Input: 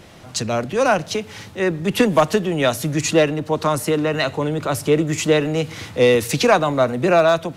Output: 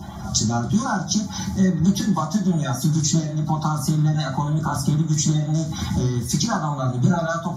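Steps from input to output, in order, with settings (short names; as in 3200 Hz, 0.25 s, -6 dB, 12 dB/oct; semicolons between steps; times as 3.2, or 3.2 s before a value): bin magnitudes rounded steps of 30 dB; compressor 6:1, threshold -29 dBFS, peak gain reduction 17.5 dB; fixed phaser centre 1100 Hz, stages 4; reverb, pre-delay 3 ms, DRR -1.5 dB; gain +4 dB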